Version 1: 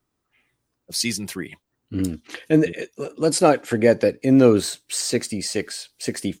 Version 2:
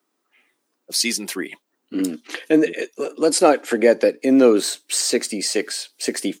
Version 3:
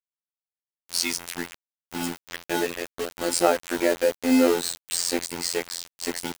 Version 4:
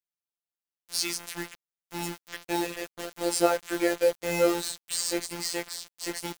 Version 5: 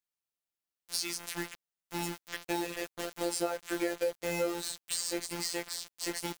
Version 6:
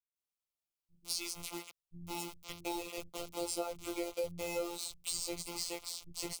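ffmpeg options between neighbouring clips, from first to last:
ffmpeg -i in.wav -filter_complex "[0:a]highpass=frequency=250:width=0.5412,highpass=frequency=250:width=1.3066,asplit=2[link_01][link_02];[link_02]acompressor=threshold=-23dB:ratio=6,volume=-2dB[link_03];[link_01][link_03]amix=inputs=2:normalize=0" out.wav
ffmpeg -i in.wav -filter_complex "[0:a]acrossover=split=340|1200|3200[link_01][link_02][link_03][link_04];[link_01]acrusher=samples=38:mix=1:aa=0.000001[link_05];[link_05][link_02][link_03][link_04]amix=inputs=4:normalize=0,afftfilt=real='hypot(re,im)*cos(PI*b)':imag='0':win_size=2048:overlap=0.75,acrusher=bits=4:mix=0:aa=0.000001,volume=-2dB" out.wav
ffmpeg -i in.wav -af "afftfilt=real='hypot(re,im)*cos(PI*b)':imag='0':win_size=1024:overlap=0.75" out.wav
ffmpeg -i in.wav -af "acompressor=threshold=-29dB:ratio=4" out.wav
ffmpeg -i in.wav -filter_complex "[0:a]asuperstop=centerf=1700:order=4:qfactor=2.1,asubboost=boost=4:cutoff=130,acrossover=split=190[link_01][link_02];[link_02]adelay=160[link_03];[link_01][link_03]amix=inputs=2:normalize=0,volume=-3.5dB" out.wav

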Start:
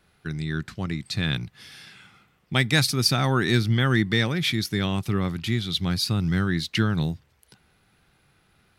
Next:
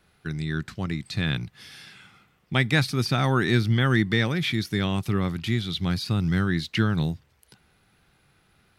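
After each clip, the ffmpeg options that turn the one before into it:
ffmpeg -i in.wav -filter_complex "[0:a]acrossover=split=3300[link_01][link_02];[link_02]acompressor=threshold=-35dB:ratio=4:attack=1:release=60[link_03];[link_01][link_03]amix=inputs=2:normalize=0" out.wav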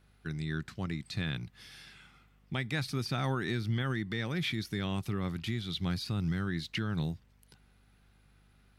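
ffmpeg -i in.wav -af "aeval=exprs='val(0)+0.00141*(sin(2*PI*50*n/s)+sin(2*PI*2*50*n/s)/2+sin(2*PI*3*50*n/s)/3+sin(2*PI*4*50*n/s)/4+sin(2*PI*5*50*n/s)/5)':channel_layout=same,alimiter=limit=-16.5dB:level=0:latency=1:release=174,volume=-6.5dB" out.wav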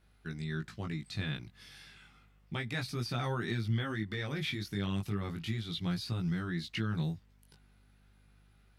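ffmpeg -i in.wav -af "flanger=delay=17:depth=3.2:speed=0.32,volume=1dB" out.wav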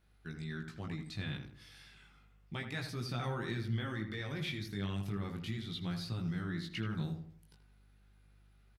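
ffmpeg -i in.wav -filter_complex "[0:a]asplit=2[link_01][link_02];[link_02]adelay=81,lowpass=frequency=1800:poles=1,volume=-6.5dB,asplit=2[link_03][link_04];[link_04]adelay=81,lowpass=frequency=1800:poles=1,volume=0.41,asplit=2[link_05][link_06];[link_06]adelay=81,lowpass=frequency=1800:poles=1,volume=0.41,asplit=2[link_07][link_08];[link_08]adelay=81,lowpass=frequency=1800:poles=1,volume=0.41,asplit=2[link_09][link_10];[link_10]adelay=81,lowpass=frequency=1800:poles=1,volume=0.41[link_11];[link_01][link_03][link_05][link_07][link_09][link_11]amix=inputs=6:normalize=0,volume=-4dB" out.wav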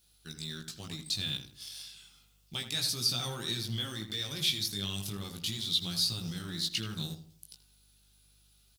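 ffmpeg -i in.wav -filter_complex "[0:a]aexciter=amount=8.6:drive=5.5:freq=3000,asplit=2[link_01][link_02];[link_02]aeval=exprs='val(0)*gte(abs(val(0)),0.0168)':channel_layout=same,volume=-9dB[link_03];[link_01][link_03]amix=inputs=2:normalize=0,volume=-4dB" out.wav

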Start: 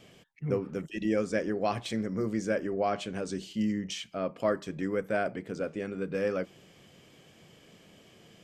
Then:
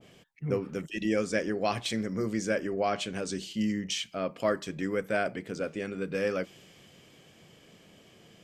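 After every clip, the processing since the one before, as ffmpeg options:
ffmpeg -i in.wav -af "adynamicequalizer=threshold=0.00501:dfrequency=1700:dqfactor=0.7:tfrequency=1700:tqfactor=0.7:attack=5:release=100:ratio=0.375:range=3:mode=boostabove:tftype=highshelf" out.wav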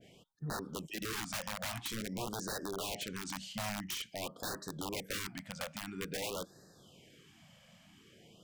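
ffmpeg -i in.wav -af "aeval=exprs='(mod(17.8*val(0)+1,2)-1)/17.8':channel_layout=same,acompressor=threshold=-35dB:ratio=2,afftfilt=real='re*(1-between(b*sr/1024,340*pow(2700/340,0.5+0.5*sin(2*PI*0.49*pts/sr))/1.41,340*pow(2700/340,0.5+0.5*sin(2*PI*0.49*pts/sr))*1.41))':imag='im*(1-between(b*sr/1024,340*pow(2700/340,0.5+0.5*sin(2*PI*0.49*pts/sr))/1.41,340*pow(2700/340,0.5+0.5*sin(2*PI*0.49*pts/sr))*1.41))':win_size=1024:overlap=0.75,volume=-3.5dB" out.wav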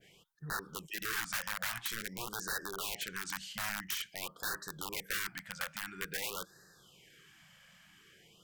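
ffmpeg -i in.wav -af "equalizer=frequency=100:width_type=o:width=0.67:gain=-9,equalizer=frequency=250:width_type=o:width=0.67:gain=-12,equalizer=frequency=630:width_type=o:width=0.67:gain=-9,equalizer=frequency=1600:width_type=o:width=0.67:gain=9,equalizer=frequency=16000:width_type=o:width=0.67:gain=8" out.wav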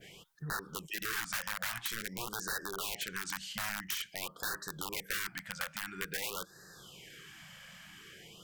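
ffmpeg -i in.wav -af "acompressor=threshold=-58dB:ratio=1.5,volume=9dB" out.wav

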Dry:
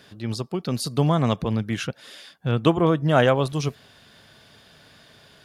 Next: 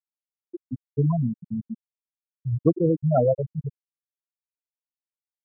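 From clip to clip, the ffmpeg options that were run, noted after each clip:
ffmpeg -i in.wav -af "afftfilt=real='re*gte(hypot(re,im),0.631)':imag='im*gte(hypot(re,im),0.631)':win_size=1024:overlap=0.75" out.wav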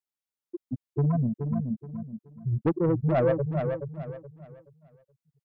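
ffmpeg -i in.wav -filter_complex "[0:a]asoftclip=type=tanh:threshold=-18.5dB,asplit=2[link_01][link_02];[link_02]aecho=0:1:425|850|1275|1700:0.473|0.142|0.0426|0.0128[link_03];[link_01][link_03]amix=inputs=2:normalize=0" out.wav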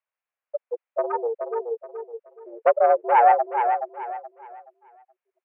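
ffmpeg -i in.wav -af "highpass=frequency=260:width_type=q:width=0.5412,highpass=frequency=260:width_type=q:width=1.307,lowpass=frequency=2400:width_type=q:width=0.5176,lowpass=frequency=2400:width_type=q:width=0.7071,lowpass=frequency=2400:width_type=q:width=1.932,afreqshift=230,volume=8.5dB" out.wav

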